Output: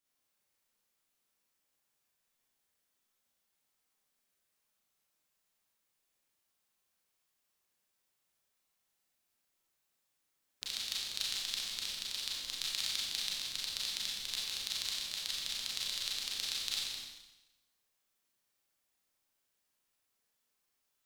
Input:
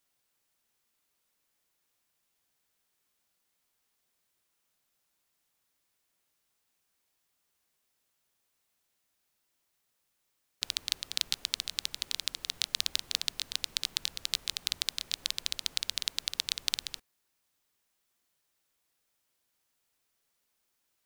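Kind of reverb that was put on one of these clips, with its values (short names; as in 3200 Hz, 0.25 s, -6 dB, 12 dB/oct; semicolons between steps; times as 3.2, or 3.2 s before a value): Schroeder reverb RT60 1 s, combs from 29 ms, DRR -5.5 dB; gain -9.5 dB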